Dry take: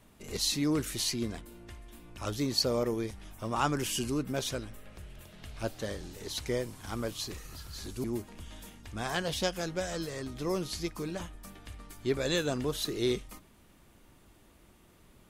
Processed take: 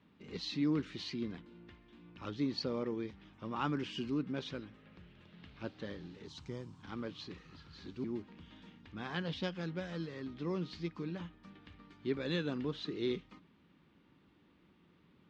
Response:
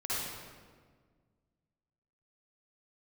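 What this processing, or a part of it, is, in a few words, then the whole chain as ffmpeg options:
guitar cabinet: -filter_complex "[0:a]highpass=96,equalizer=frequency=120:width_type=q:width=4:gain=-3,equalizer=frequency=170:width_type=q:width=4:gain=8,equalizer=frequency=280:width_type=q:width=4:gain=5,equalizer=frequency=660:width_type=q:width=4:gain=-9,lowpass=frequency=4000:width=0.5412,lowpass=frequency=4000:width=1.3066,asettb=1/sr,asplit=3[link_01][link_02][link_03];[link_01]atrim=end=6.264[link_04];[link_02]atrim=start=6.26:end=6.83,asetpts=PTS-STARTPTS,afade=type=in:duration=0.004:curve=qsin,afade=type=out:start_time=0.566:duration=0.004:curve=qsin,equalizer=frequency=125:width_type=o:width=1:gain=4,equalizer=frequency=250:width_type=o:width=1:gain=-4,equalizer=frequency=500:width_type=o:width=1:gain=-8,equalizer=frequency=1000:width_type=o:width=1:gain=3,equalizer=frequency=2000:width_type=o:width=1:gain=-11,equalizer=frequency=4000:width_type=o:width=1:gain=-5,equalizer=frequency=8000:width_type=o:width=1:gain=10[link_05];[link_03]atrim=start=6.826[link_06];[link_04][link_05]acrossfade=duration=0.004:curve1=hsin:curve2=qsin[link_07];[link_07][link_06]acrossfade=duration=0.004:curve1=qsin:curve2=hsin,volume=-6.5dB"

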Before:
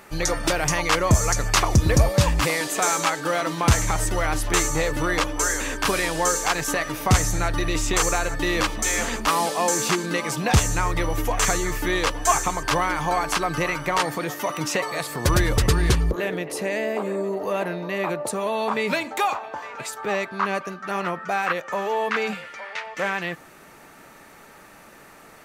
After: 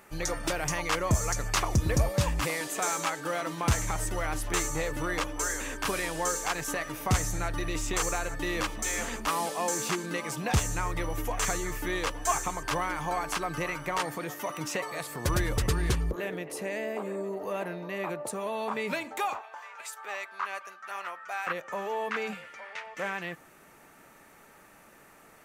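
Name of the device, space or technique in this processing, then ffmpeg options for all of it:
exciter from parts: -filter_complex "[0:a]asplit=2[link_01][link_02];[link_02]highpass=frequency=4000:width=0.5412,highpass=frequency=4000:width=1.3066,asoftclip=type=tanh:threshold=-29.5dB,volume=-8dB[link_03];[link_01][link_03]amix=inputs=2:normalize=0,asettb=1/sr,asplit=3[link_04][link_05][link_06];[link_04]atrim=end=19.414[link_07];[link_05]atrim=start=19.41:end=21.47,asetpts=PTS-STARTPTS,afade=type=in:duration=0.004:curve=qsin,afade=type=out:start_time=2.056:duration=0.004:curve=qsin,highpass=850[link_08];[link_06]atrim=start=21.466[link_09];[link_07][link_08]acrossfade=duration=0.004:curve1=hsin:curve2=qsin[link_10];[link_10][link_09]acrossfade=duration=0.004:curve1=qsin:curve2=hsin,volume=-8dB"

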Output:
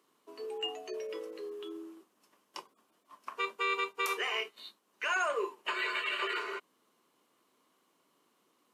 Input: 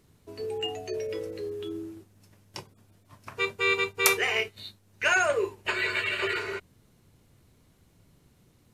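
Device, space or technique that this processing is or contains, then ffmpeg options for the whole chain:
laptop speaker: -af "highpass=frequency=270:width=0.5412,highpass=frequency=270:width=1.3066,equalizer=frequency=1100:width_type=o:width=0.47:gain=12,equalizer=frequency=3000:width_type=o:width=0.22:gain=6,alimiter=limit=-15.5dB:level=0:latency=1:release=88,volume=-7dB"

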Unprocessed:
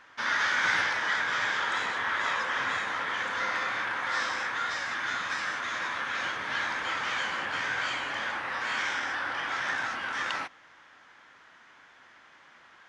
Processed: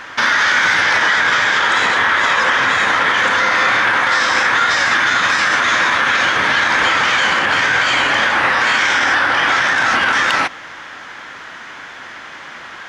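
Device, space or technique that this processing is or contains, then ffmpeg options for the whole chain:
mastering chain: -af "equalizer=frequency=1000:width_type=o:width=0.94:gain=-1.5,acompressor=threshold=-32dB:ratio=2.5,asoftclip=type=hard:threshold=-23.5dB,alimiter=level_in=27.5dB:limit=-1dB:release=50:level=0:latency=1,volume=-4.5dB"

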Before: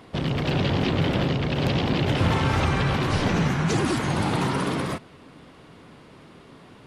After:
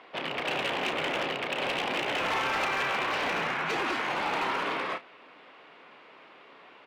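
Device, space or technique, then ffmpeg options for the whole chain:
megaphone: -filter_complex "[0:a]highpass=590,lowpass=3000,equalizer=frequency=2500:width_type=o:width=0.59:gain=5,asoftclip=type=hard:threshold=-24.5dB,asplit=2[link_01][link_02];[link_02]adelay=31,volume=-11dB[link_03];[link_01][link_03]amix=inputs=2:normalize=0"

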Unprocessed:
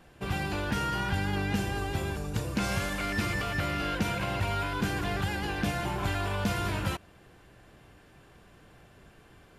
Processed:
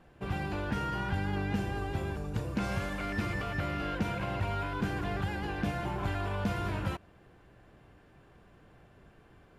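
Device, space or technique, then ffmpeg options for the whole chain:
through cloth: -af "highshelf=frequency=3000:gain=-11,volume=-2dB"

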